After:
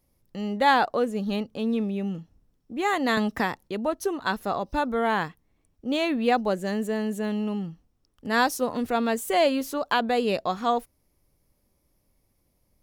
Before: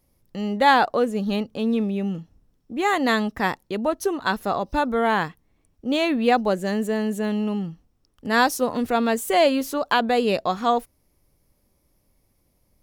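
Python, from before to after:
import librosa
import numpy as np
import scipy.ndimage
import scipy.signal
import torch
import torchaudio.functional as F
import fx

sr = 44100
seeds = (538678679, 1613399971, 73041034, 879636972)

y = fx.band_squash(x, sr, depth_pct=100, at=(3.17, 3.68))
y = y * 10.0 ** (-3.5 / 20.0)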